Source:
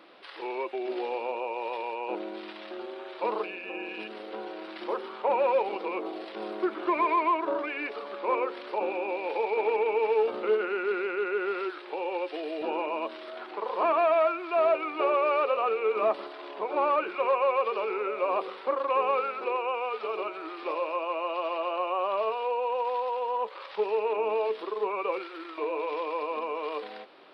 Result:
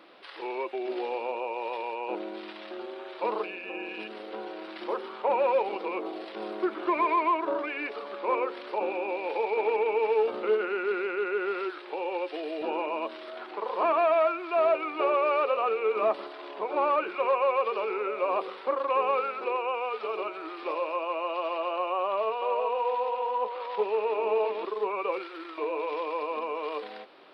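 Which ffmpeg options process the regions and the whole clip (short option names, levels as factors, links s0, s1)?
-filter_complex "[0:a]asettb=1/sr,asplit=3[s0][s1][s2];[s0]atrim=end=22.034[s3];[s1]atrim=start=22.03:end=24.65,asetpts=PTS-STARTPTS,afade=t=in:d=0.004:c=qsin,afade=t=out:st=2.616:d=0.004:c=qsin,highpass=110,lowpass=4300,bandreject=f=1600:w=25,aecho=1:1:384:0.473,atrim=end_sample=115542[s4];[s2]atrim=start=24.646[s5];[s3][s4]acrossfade=d=0.004:c1=hsin:c2=qsin[s6];[s6][s5]acrossfade=d=0.004:c1=qsin:c2=hsin"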